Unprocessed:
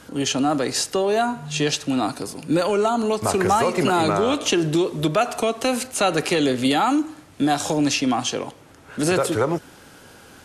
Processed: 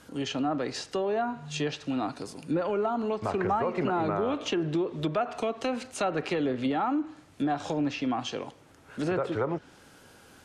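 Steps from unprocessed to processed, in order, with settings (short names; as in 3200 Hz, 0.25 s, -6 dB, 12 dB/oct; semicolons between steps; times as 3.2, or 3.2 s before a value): treble ducked by the level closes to 1600 Hz, closed at -15 dBFS; gain -8 dB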